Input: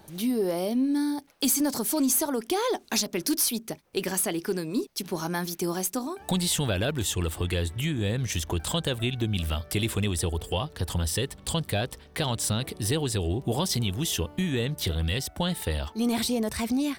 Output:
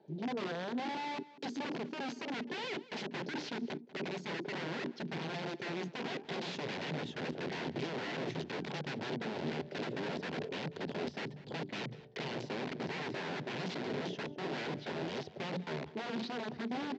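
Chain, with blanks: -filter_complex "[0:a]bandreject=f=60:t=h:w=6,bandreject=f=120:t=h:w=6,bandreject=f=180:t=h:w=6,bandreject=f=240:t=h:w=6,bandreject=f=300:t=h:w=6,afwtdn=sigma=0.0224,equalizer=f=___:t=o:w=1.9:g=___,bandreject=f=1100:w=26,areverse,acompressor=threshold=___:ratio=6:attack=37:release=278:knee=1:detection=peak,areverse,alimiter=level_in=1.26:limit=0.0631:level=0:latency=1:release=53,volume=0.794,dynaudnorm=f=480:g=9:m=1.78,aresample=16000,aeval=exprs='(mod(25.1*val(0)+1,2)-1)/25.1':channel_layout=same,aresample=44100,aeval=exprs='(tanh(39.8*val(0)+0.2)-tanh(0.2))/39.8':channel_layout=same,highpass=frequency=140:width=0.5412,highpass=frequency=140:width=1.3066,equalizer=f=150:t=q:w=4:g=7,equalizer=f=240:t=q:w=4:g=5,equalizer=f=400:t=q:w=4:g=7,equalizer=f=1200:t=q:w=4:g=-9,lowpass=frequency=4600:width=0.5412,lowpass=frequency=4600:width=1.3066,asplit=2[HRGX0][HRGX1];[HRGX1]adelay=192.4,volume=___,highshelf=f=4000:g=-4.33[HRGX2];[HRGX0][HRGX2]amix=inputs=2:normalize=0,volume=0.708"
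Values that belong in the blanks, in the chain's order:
530, 11, 0.0355, 0.126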